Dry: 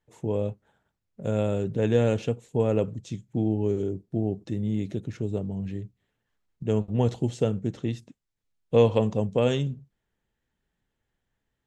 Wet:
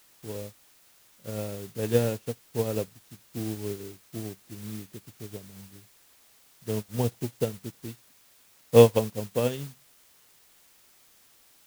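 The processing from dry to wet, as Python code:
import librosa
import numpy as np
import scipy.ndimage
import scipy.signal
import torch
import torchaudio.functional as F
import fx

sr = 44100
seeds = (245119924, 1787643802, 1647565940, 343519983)

y = fx.quant_dither(x, sr, seeds[0], bits=6, dither='triangular')
y = fx.upward_expand(y, sr, threshold_db=-34.0, expansion=2.5)
y = y * librosa.db_to_amplitude(5.5)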